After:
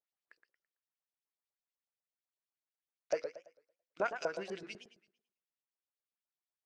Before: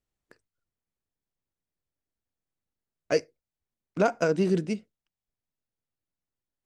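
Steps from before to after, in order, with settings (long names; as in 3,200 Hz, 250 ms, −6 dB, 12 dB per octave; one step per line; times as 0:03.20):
mains-hum notches 60/120/180/240/300/360/420/480 Hz
auto-filter band-pass saw up 8 Hz 590–5,900 Hz
feedback echo with a swinging delay time 111 ms, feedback 33%, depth 219 cents, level −9 dB
level −1 dB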